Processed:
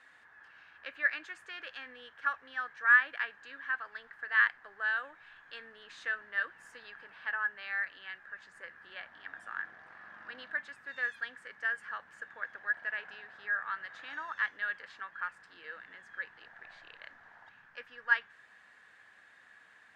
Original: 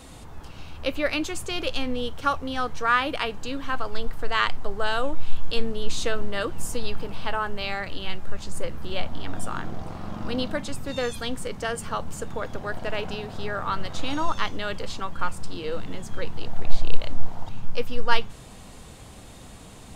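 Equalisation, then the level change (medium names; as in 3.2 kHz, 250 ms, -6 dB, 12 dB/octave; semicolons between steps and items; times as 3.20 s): band-pass filter 1.7 kHz, Q 12; +7.5 dB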